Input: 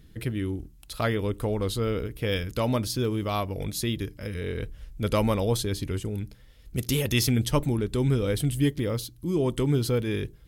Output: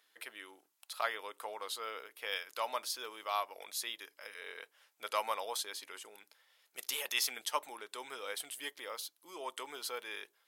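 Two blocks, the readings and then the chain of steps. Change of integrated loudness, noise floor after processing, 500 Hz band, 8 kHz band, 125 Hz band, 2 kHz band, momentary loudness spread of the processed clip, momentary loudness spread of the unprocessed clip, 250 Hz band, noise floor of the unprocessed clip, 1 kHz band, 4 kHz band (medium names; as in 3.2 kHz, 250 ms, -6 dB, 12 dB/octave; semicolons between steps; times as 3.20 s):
-12.0 dB, -77 dBFS, -16.0 dB, -6.0 dB, under -40 dB, -4.5 dB, 13 LU, 9 LU, -32.0 dB, -52 dBFS, -3.5 dB, -5.5 dB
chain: ladder high-pass 680 Hz, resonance 30%; trim +1 dB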